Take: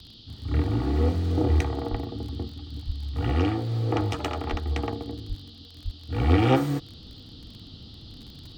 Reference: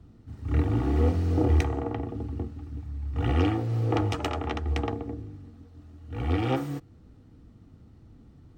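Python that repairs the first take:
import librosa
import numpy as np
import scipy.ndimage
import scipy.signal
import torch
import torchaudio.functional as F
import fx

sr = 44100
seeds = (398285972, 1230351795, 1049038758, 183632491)

y = fx.fix_declick_ar(x, sr, threshold=6.5)
y = fx.fix_deplosive(y, sr, at_s=(1.9, 2.86, 4.5, 5.28, 5.84))
y = fx.noise_reduce(y, sr, print_start_s=5.35, print_end_s=5.85, reduce_db=6.0)
y = fx.gain(y, sr, db=fx.steps((0.0, 0.0), (6.09, -6.5)))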